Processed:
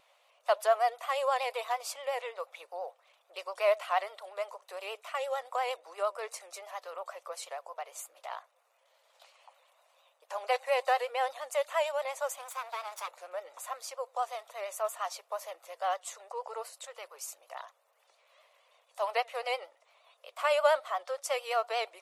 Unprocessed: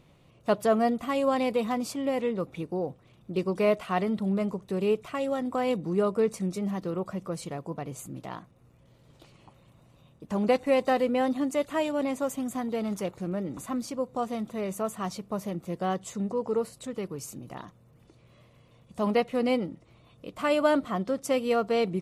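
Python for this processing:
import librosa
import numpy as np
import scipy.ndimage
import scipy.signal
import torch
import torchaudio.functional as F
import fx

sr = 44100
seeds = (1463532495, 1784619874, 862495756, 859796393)

y = fx.lower_of_two(x, sr, delay_ms=0.84, at=(12.38, 13.07), fade=0.02)
y = scipy.signal.sosfilt(scipy.signal.butter(8, 570.0, 'highpass', fs=sr, output='sos'), y)
y = fx.vibrato(y, sr, rate_hz=8.6, depth_cents=72.0)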